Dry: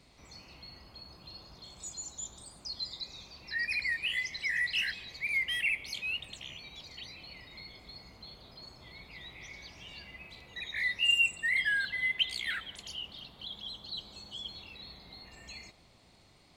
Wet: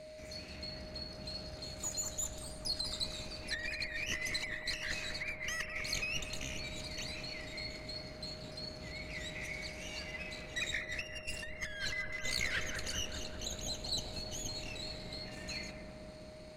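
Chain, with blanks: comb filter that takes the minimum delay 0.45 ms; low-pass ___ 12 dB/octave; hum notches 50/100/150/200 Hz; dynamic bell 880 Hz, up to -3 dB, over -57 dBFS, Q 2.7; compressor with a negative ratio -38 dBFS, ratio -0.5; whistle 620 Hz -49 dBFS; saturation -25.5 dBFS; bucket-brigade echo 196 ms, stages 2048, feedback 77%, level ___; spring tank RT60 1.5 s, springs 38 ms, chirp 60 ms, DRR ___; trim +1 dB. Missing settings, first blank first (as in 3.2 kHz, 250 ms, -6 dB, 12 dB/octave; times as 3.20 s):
11 kHz, -3.5 dB, 14 dB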